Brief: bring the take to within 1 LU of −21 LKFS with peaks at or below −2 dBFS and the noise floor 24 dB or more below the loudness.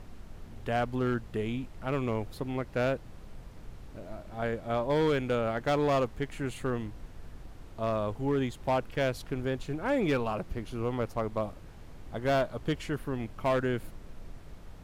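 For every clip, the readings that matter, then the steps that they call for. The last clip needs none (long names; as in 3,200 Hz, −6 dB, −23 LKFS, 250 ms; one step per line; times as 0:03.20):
share of clipped samples 1.3%; peaks flattened at −21.5 dBFS; background noise floor −48 dBFS; target noise floor −56 dBFS; integrated loudness −31.5 LKFS; sample peak −21.5 dBFS; target loudness −21.0 LKFS
→ clipped peaks rebuilt −21.5 dBFS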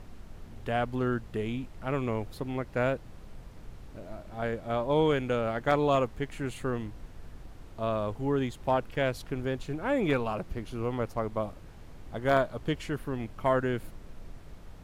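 share of clipped samples 0.0%; background noise floor −48 dBFS; target noise floor −55 dBFS
→ noise reduction from a noise print 7 dB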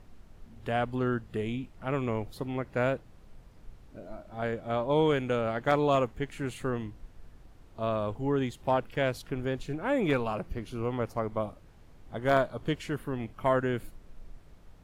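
background noise floor −54 dBFS; target noise floor −55 dBFS
→ noise reduction from a noise print 6 dB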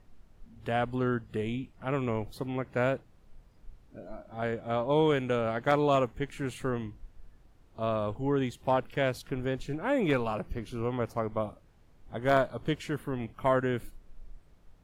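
background noise floor −59 dBFS; integrated loudness −31.0 LKFS; sample peak −12.5 dBFS; target loudness −21.0 LKFS
→ level +10 dB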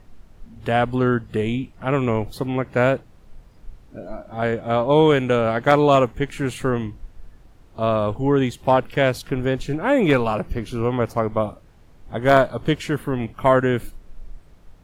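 integrated loudness −21.0 LKFS; sample peak −2.5 dBFS; background noise floor −49 dBFS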